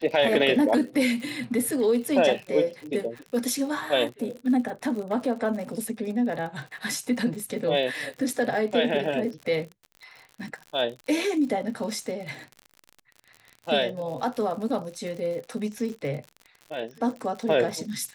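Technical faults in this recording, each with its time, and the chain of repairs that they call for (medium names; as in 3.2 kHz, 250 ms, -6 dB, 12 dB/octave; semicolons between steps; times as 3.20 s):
crackle 58 per s -34 dBFS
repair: de-click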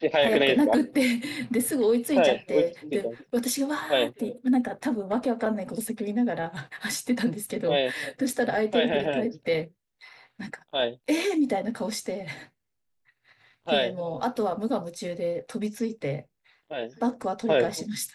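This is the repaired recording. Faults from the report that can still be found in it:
nothing left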